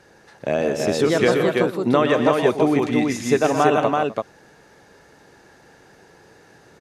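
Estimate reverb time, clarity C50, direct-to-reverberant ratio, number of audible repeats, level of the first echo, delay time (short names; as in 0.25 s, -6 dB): none, none, none, 4, -10.0 dB, 0.122 s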